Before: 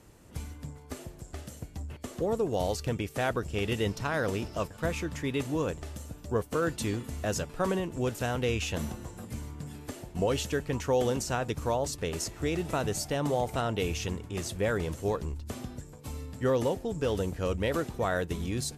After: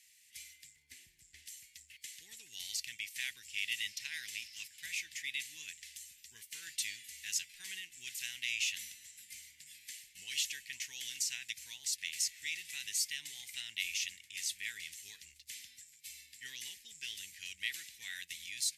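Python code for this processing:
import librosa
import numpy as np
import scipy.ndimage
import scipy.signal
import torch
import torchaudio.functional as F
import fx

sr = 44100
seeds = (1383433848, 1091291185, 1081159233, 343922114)

y = fx.tilt_shelf(x, sr, db=9.0, hz=1200.0, at=(0.76, 1.46))
y = scipy.signal.sosfilt(scipy.signal.ellip(4, 1.0, 40, 2000.0, 'highpass', fs=sr, output='sos'), y)
y = y * librosa.db_to_amplitude(2.0)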